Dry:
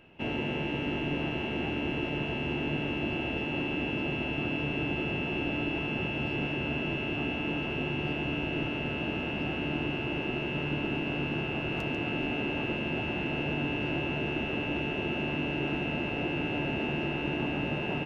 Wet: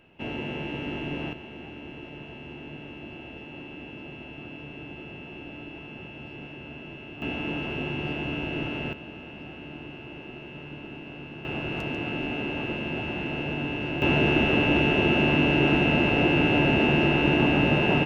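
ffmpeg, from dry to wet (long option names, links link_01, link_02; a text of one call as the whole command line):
ffmpeg -i in.wav -af "asetnsamples=nb_out_samples=441:pad=0,asendcmd='1.33 volume volume -9.5dB;7.22 volume volume 1dB;8.93 volume volume -9dB;11.45 volume volume 1dB;14.02 volume volume 10dB',volume=-1dB" out.wav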